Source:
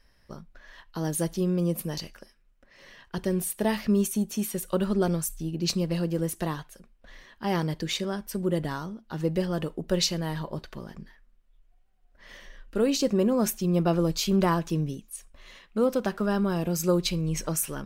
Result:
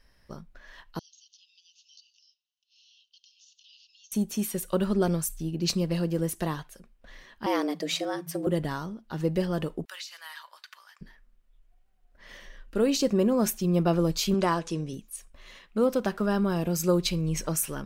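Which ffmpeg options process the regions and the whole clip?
-filter_complex "[0:a]asettb=1/sr,asplit=3[a][b][c];[a]atrim=end=0.994[d];[b]atrim=start=0.99:end=4.12,asetpts=PTS-STARTPTS,afade=t=in:d=0.004:c=qsin,afade=t=out:st=3.126:d=0.004:c=qsin,asuperpass=centerf=4300:order=20:qfactor=1.1,acompressor=threshold=-57dB:ratio=3:attack=3.2:release=140:knee=1:detection=peak[e];[c]atrim=start=4.116[f];[d][e]acrossfade=d=0.004:c1=hsin:c2=qsin[g];[g][f]acrossfade=d=0.004:c1=qsin:c2=hsin,asettb=1/sr,asplit=3[h][i][j];[h]atrim=end=7.464[k];[i]atrim=start=7.46:end=8.47,asetpts=PTS-STARTPTS,afade=t=in:d=0.004:c=qsin,afade=t=out:st=1.006:d=0.004:c=qsin,asubboost=boost=8.5:cutoff=62,afreqshift=140[l];[j]atrim=start=8.466[m];[k][l]acrossfade=d=0.004:c1=hsin:c2=qsin[n];[n][m]acrossfade=d=0.004:c1=qsin:c2=hsin,asettb=1/sr,asplit=3[o][p][q];[o]atrim=end=9.854[r];[p]atrim=start=9.85:end=11.01,asetpts=PTS-STARTPTS,afade=t=in:d=0.004:c=qsin,afade=t=out:st=1.156:d=0.004:c=qsin,highpass=f=1.2k:w=0.5412,highpass=f=1.2k:w=1.3066,acompressor=threshold=-36dB:ratio=16:attack=3.2:release=140:knee=1:detection=peak[s];[q]atrim=start=11.006[t];[r][s]acrossfade=d=0.004:c1=hsin:c2=qsin[u];[u][t]acrossfade=d=0.004:c1=qsin:c2=hsin,asettb=1/sr,asplit=3[v][w][x];[v]atrim=end=14.344[y];[w]atrim=start=14.34:end=14.93,asetpts=PTS-STARTPTS,afade=t=in:d=0.004:c=qsin,afade=t=out:st=0.586:d=0.004:c=qsin,lowpass=f=9.5k:w=0.5412,lowpass=f=9.5k:w=1.3066,bass=f=250:g=-7,treble=f=4k:g=3,bandreject=f=247.9:t=h:w=4,bandreject=f=495.8:t=h:w=4[z];[x]atrim=start=14.926[aa];[y][z]acrossfade=d=0.004:c1=hsin:c2=qsin[ab];[ab][aa]acrossfade=d=0.004:c1=qsin:c2=hsin"

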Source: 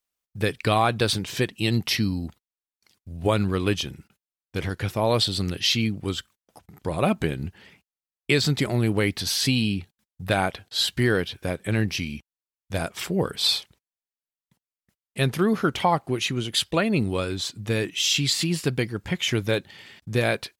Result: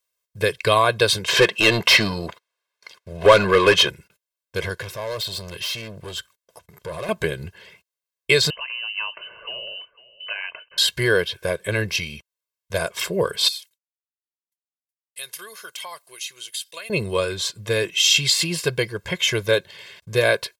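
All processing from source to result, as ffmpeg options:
-filter_complex "[0:a]asettb=1/sr,asplit=3[a][b][c];[a]atrim=end=1.284[d];[b]atrim=start=1.28:end=3.9,asetpts=PTS-STARTPTS,afade=t=in:d=0.004:c=qsin,afade=t=out:st=2.616:d=0.004:c=qsin,highshelf=f=4.2k:g=-7,asplit=2[e][f];[f]highpass=f=720:p=1,volume=24dB,asoftclip=type=tanh:threshold=-7.5dB[g];[e][g]amix=inputs=2:normalize=0,lowpass=f=2.9k:p=1,volume=-6dB[h];[c]atrim=start=3.896[i];[d][h]acrossfade=d=0.004:c1=hsin:c2=qsin[j];[j][i]acrossfade=d=0.004:c1=qsin:c2=hsin,asettb=1/sr,asplit=3[k][l][m];[k]atrim=end=4.804[n];[l]atrim=start=4.8:end=7.09,asetpts=PTS-STARTPTS,afade=t=in:d=0.004:c=qsin,afade=t=out:st=2.286:d=0.004:c=qsin,acompressor=threshold=-30dB:ratio=2:attack=3.2:release=140:knee=1:detection=peak,volume=30.5dB,asoftclip=hard,volume=-30.5dB[o];[m]atrim=start=7.086[p];[n][o]acrossfade=d=0.004:c1=hsin:c2=qsin[q];[q][p]acrossfade=d=0.004:c1=qsin:c2=hsin,asettb=1/sr,asplit=3[r][s][t];[r]atrim=end=8.504[u];[s]atrim=start=8.5:end=10.78,asetpts=PTS-STARTPTS,afade=t=in:d=0.004:c=qsin,afade=t=out:st=2.276:d=0.004:c=qsin,acompressor=threshold=-33dB:ratio=3:attack=3.2:release=140:knee=1:detection=peak,aecho=1:1:501:0.112,atrim=end_sample=100548,lowpass=f=2.6k:t=q:w=0.5098,lowpass=f=2.6k:t=q:w=0.6013,lowpass=f=2.6k:t=q:w=0.9,lowpass=f=2.6k:t=q:w=2.563,afreqshift=-3100[v];[t]atrim=start=10.776[w];[u][v]acrossfade=d=0.004:c1=hsin:c2=qsin[x];[x][w]acrossfade=d=0.004:c1=qsin:c2=hsin,asettb=1/sr,asplit=3[y][z][aa];[y]atrim=end=13.484[ab];[z]atrim=start=13.48:end=16.9,asetpts=PTS-STARTPTS,afade=t=in:d=0.004:c=qsin,afade=t=out:st=3.416:d=0.004:c=qsin,agate=range=-33dB:threshold=-53dB:ratio=3:release=100:detection=peak,aderivative,acompressor=threshold=-35dB:ratio=2.5:attack=3.2:release=140:knee=1:detection=peak[ac];[aa]atrim=start=16.896[ad];[ab][ac]acrossfade=d=0.004:c1=hsin:c2=qsin[ae];[ae][ad]acrossfade=d=0.004:c1=qsin:c2=hsin,lowshelf=f=180:g=-12,bandreject=f=1.3k:w=22,aecho=1:1:1.9:0.92,volume=3dB"

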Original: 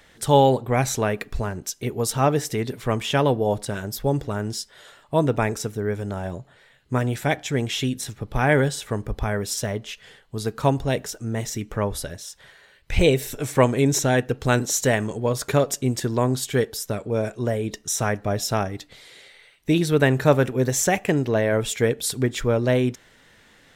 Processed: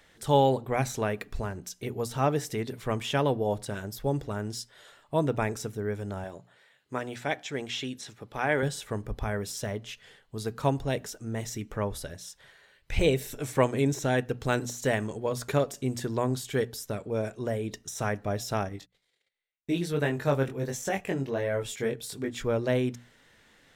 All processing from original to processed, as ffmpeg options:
-filter_complex "[0:a]asettb=1/sr,asplit=3[a][b][c];[a]atrim=end=6.244[d];[b]atrim=start=6.24:end=8.63,asetpts=PTS-STARTPTS,afade=t=in:d=0.004:c=qsin,afade=t=out:st=2.386:d=0.004:c=qsin,acrossover=split=7100[e][f];[f]acompressor=threshold=-55dB:ratio=4:attack=1:release=60[g];[e][g]amix=inputs=2:normalize=0,highpass=f=340:p=1[h];[c]atrim=start=8.626[i];[d][h]acrossfade=d=0.004:c1=hsin:c2=qsin[j];[j][i]acrossfade=d=0.004:c1=qsin:c2=hsin,asettb=1/sr,asplit=3[k][l][m];[k]atrim=end=18.694[n];[l]atrim=start=18.69:end=22.44,asetpts=PTS-STARTPTS,afade=t=in:d=0.004:c=qsin,afade=t=out:st=3.746:d=0.004:c=qsin,flanger=delay=20:depth=2.5:speed=1.4,asoftclip=type=hard:threshold=-7.5dB,agate=range=-30dB:threshold=-48dB:ratio=16:release=100:detection=peak[o];[m]atrim=start=22.436[p];[n][o]acrossfade=d=0.004:c1=hsin:c2=qsin[q];[q][p]acrossfade=d=0.004:c1=qsin:c2=hsin,bandreject=f=60:t=h:w=6,bandreject=f=120:t=h:w=6,bandreject=f=180:t=h:w=6,bandreject=f=240:t=h:w=6,deesser=0.5,volume=-6dB"

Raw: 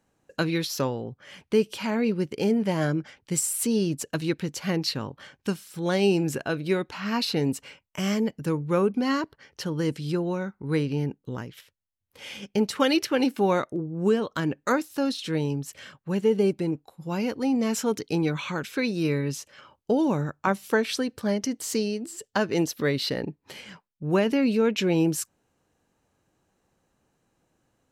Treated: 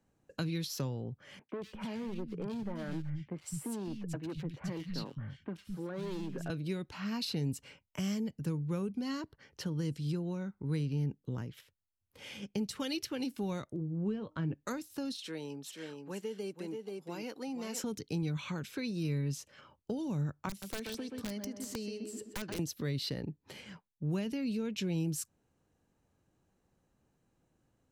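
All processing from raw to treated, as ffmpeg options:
-filter_complex "[0:a]asettb=1/sr,asplit=3[a][b][c];[a]atrim=end=1.394[d];[b]atrim=start=1.39:end=6.5,asetpts=PTS-STARTPTS,afade=t=in:d=0.004:c=qsin,afade=t=out:st=5.106:d=0.004:c=qsin,bass=f=250:g=-1,treble=f=4k:g=-12,asoftclip=type=hard:threshold=-25.5dB,acrossover=split=180|2200[e][f][g];[g]adelay=100[h];[e]adelay=210[i];[i][f][h]amix=inputs=3:normalize=0,atrim=end_sample=225351[j];[c]atrim=start=6.496[k];[d][j]acrossfade=d=0.004:c1=hsin:c2=qsin[l];[l][k]acrossfade=d=0.004:c1=qsin:c2=hsin,asettb=1/sr,asplit=3[m][n][o];[m]atrim=end=13.794[p];[n]atrim=start=13.79:end=14.54,asetpts=PTS-STARTPTS,afade=t=in:d=0.004:c=qsin,afade=t=out:st=0.746:d=0.004:c=qsin,lowpass=2.3k,asplit=2[q][r];[r]adelay=19,volume=-14dB[s];[q][s]amix=inputs=2:normalize=0,atrim=end_sample=33075,bandreject=f=306.7:t=h:w=4,bandreject=f=613.4:t=h:w=4,bandreject=f=920.1:t=h:w=4[t];[o]atrim=start=14.536[u];[p][t]acrossfade=d=0.004:c1=hsin:c2=qsin[v];[v][u]acrossfade=d=0.004:c1=qsin:c2=hsin,asettb=1/sr,asplit=3[w][x][y];[w]atrim=end=15.164[z];[x]atrim=start=15.16:end=17.84,asetpts=PTS-STARTPTS,afade=t=in:d=0.004:c=qsin,afade=t=out:st=2.676:d=0.004:c=qsin,highpass=270,lowshelf=f=360:g=-8.5,aecho=1:1:481:0.447,atrim=end_sample=118188[aa];[y]atrim=start=17.836[ab];[z][aa]acrossfade=d=0.004:c1=hsin:c2=qsin[ac];[ac][ab]acrossfade=d=0.004:c1=qsin:c2=hsin,asettb=1/sr,asplit=3[ad][ae][af];[ad]atrim=end=20.494[ag];[ae]atrim=start=20.49:end=22.59,asetpts=PTS-STARTPTS,afade=t=in:d=0.004:c=qsin,afade=t=out:st=2.096:d=0.004:c=qsin,asplit=2[ah][ai];[ai]adelay=127,lowpass=f=2.5k:p=1,volume=-7.5dB,asplit=2[aj][ak];[ak]adelay=127,lowpass=f=2.5k:p=1,volume=0.38,asplit=2[al][am];[am]adelay=127,lowpass=f=2.5k:p=1,volume=0.38,asplit=2[an][ao];[ao]adelay=127,lowpass=f=2.5k:p=1,volume=0.38[ap];[ah][aj][al][an][ap]amix=inputs=5:normalize=0,atrim=end_sample=92610,acrossover=split=490|1700[aq][ar][as];[aq]acompressor=threshold=-34dB:ratio=4[at];[ar]acompressor=threshold=-40dB:ratio=4[au];[as]acompressor=threshold=-36dB:ratio=4[av];[at][au][av]amix=inputs=3:normalize=0,aeval=exprs='(mod(14.1*val(0)+1,2)-1)/14.1':c=same[aw];[af]atrim=start=22.586[ax];[ag][aw]acrossfade=d=0.004:c1=hsin:c2=qsin[ay];[ay][ax]acrossfade=d=0.004:c1=qsin:c2=hsin,lowshelf=f=330:g=8,acrossover=split=160|3000[az][ba][bb];[ba]acompressor=threshold=-31dB:ratio=4[bc];[az][bc][bb]amix=inputs=3:normalize=0,volume=-8dB"

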